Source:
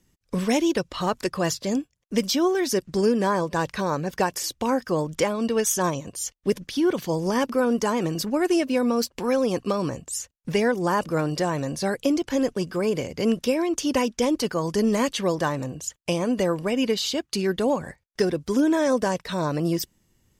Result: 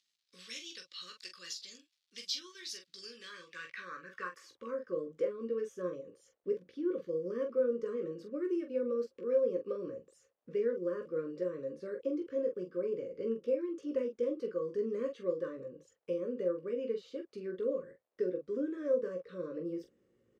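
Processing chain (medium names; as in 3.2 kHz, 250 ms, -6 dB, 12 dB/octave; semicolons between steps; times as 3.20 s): Chebyshev band-stop 550–1100 Hz, order 4; reverse; upward compressor, threshold -38 dBFS; reverse; early reflections 17 ms -6 dB, 44 ms -7.5 dB; crackle 450 per s -53 dBFS; band-pass sweep 4.1 kHz -> 530 Hz, 3.09–5.06 s; trim -7 dB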